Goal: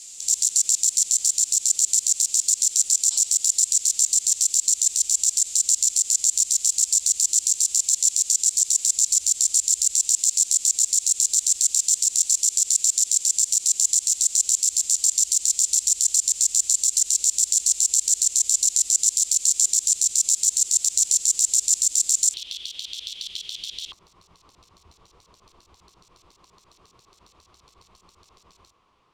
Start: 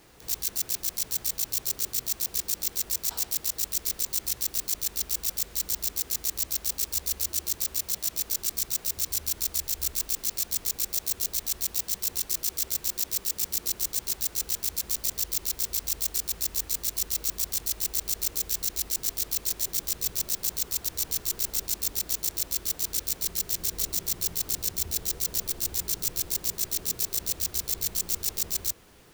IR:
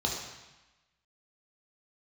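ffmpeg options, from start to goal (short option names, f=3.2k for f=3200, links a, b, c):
-af "highshelf=f=2k:g=7.5,alimiter=limit=-15.5dB:level=0:latency=1:release=42,aexciter=amount=9.1:drive=3.9:freq=2.4k,asetnsamples=n=441:p=0,asendcmd='22.34 lowpass f 3300;23.92 lowpass f 1100',lowpass=f=7.4k:t=q:w=6.9,volume=-14.5dB"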